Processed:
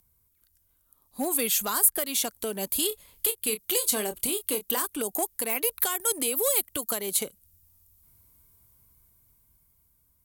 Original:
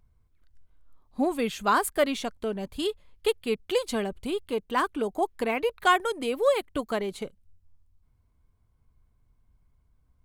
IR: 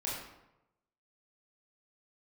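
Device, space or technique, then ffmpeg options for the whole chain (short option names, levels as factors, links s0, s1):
FM broadcast chain: -filter_complex "[0:a]highpass=f=75:p=1,dynaudnorm=f=440:g=9:m=3.55,acrossover=split=230|4200[s0][s1][s2];[s0]acompressor=threshold=0.00891:ratio=4[s3];[s1]acompressor=threshold=0.0708:ratio=4[s4];[s2]acompressor=threshold=0.0158:ratio=4[s5];[s3][s4][s5]amix=inputs=3:normalize=0,aemphasis=mode=production:type=50fm,alimiter=limit=0.158:level=0:latency=1:release=332,asoftclip=type=hard:threshold=0.106,lowpass=f=15000:w=0.5412,lowpass=f=15000:w=1.3066,aemphasis=mode=production:type=50fm,asettb=1/sr,asplit=3[s6][s7][s8];[s6]atrim=end=2.884[s9];[s7]atrim=start=2.88:end=4.86,asetpts=PTS-STARTPTS,afade=t=in:d=0.004:c=qsin,afade=t=out:st=1.976:d=0.004:c=qsin,asplit=2[s10][s11];[s11]adelay=28,volume=0.335[s12];[s10][s12]amix=inputs=2:normalize=0,atrim=end_sample=87318[s13];[s8]atrim=start=4.856[s14];[s9][s13]acrossfade=d=0.004:c1=hsin:c2=qsin[s15];[s15][s14]acrossfade=d=0.004:c1=qsin:c2=hsin,volume=0.75"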